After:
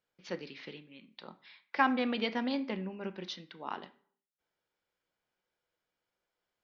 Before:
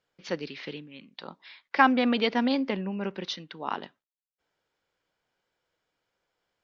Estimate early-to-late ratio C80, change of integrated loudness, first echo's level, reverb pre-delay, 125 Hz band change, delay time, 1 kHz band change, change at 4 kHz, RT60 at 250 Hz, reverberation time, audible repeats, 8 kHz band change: 20.5 dB, -7.5 dB, none, 3 ms, -7.0 dB, none, -7.0 dB, -7.0 dB, 0.60 s, 0.50 s, none, n/a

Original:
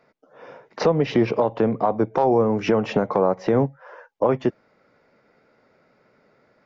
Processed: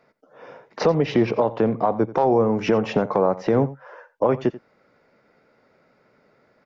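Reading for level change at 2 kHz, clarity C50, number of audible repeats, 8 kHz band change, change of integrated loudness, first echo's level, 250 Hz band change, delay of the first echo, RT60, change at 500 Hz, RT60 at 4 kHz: 0.0 dB, none, 1, n/a, 0.0 dB, -17.5 dB, 0.0 dB, 87 ms, none, 0.0 dB, none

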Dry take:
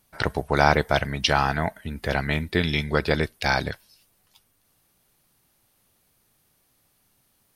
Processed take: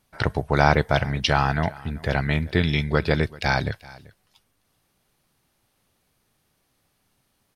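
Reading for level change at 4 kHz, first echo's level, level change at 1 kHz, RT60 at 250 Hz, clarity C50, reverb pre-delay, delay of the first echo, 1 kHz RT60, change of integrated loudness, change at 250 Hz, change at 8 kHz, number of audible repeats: -1.0 dB, -21.5 dB, 0.0 dB, none, none, none, 0.386 s, none, +1.0 dB, +2.0 dB, -3.0 dB, 1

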